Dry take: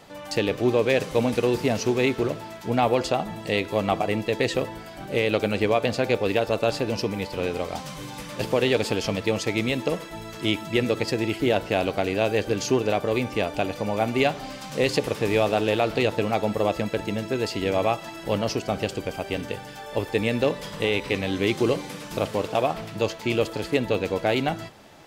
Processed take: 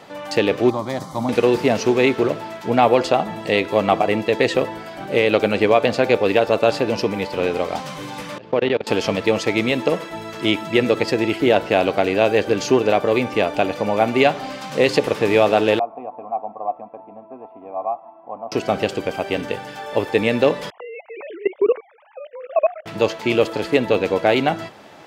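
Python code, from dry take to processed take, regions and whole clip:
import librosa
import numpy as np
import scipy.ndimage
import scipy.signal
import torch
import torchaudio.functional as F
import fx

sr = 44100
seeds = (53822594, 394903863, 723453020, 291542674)

y = fx.chain(x, sr, fx.highpass(hz=41.0, slope=12),
    fx.peak_eq(hz=1600.0, db=-13.5, octaves=0.35),
    fx.fixed_phaser(hz=1100.0, stages=4), at=(0.7, 1.29))
y = fx.chain(y, sr, fx.level_steps(step_db=23),
    fx.air_absorb(metres=200.0), at=(8.38, 8.87))
y = fx.chain(y, sr, fx.formant_cascade(vowel='a'),
    fx.peak_eq(hz=250.0, db=12.5, octaves=0.44), at=(15.79, 18.52))
y = fx.chain(y, sr, fx.sine_speech(),
    fx.lowpass(hz=2600.0, slope=24),
    fx.level_steps(step_db=20), at=(20.7, 22.86))
y = fx.highpass(y, sr, hz=250.0, slope=6)
y = fx.high_shelf(y, sr, hz=4600.0, db=-10.0)
y = y * 10.0 ** (8.0 / 20.0)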